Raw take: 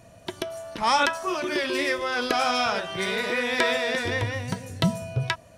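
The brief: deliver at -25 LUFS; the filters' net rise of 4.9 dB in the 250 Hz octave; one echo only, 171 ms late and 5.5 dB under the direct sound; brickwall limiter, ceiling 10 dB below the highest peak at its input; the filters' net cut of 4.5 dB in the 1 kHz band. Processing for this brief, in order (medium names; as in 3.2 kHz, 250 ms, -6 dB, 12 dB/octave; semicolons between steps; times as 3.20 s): peaking EQ 250 Hz +7 dB; peaking EQ 1 kHz -6.5 dB; peak limiter -16 dBFS; delay 171 ms -5.5 dB; trim +1 dB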